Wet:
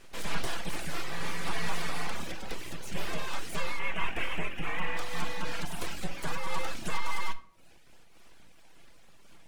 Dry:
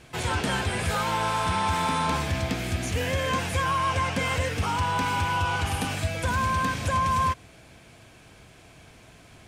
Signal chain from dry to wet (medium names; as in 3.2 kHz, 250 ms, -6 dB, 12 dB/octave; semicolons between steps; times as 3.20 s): 2.24–2.88 s: high-pass 110 Hz 12 dB/octave; full-wave rectifier; reverb removal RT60 0.76 s; 3.79–4.97 s: resonant high shelf 3.4 kHz -8 dB, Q 3; simulated room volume 1000 m³, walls furnished, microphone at 0.75 m; random flutter of the level, depth 55%; trim -2 dB